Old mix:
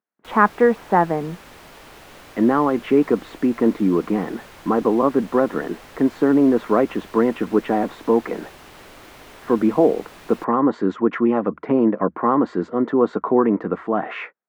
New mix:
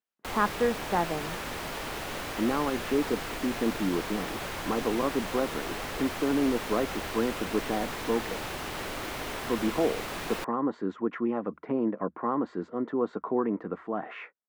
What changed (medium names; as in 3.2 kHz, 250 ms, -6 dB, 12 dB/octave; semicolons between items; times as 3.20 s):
speech -11.0 dB; background +8.0 dB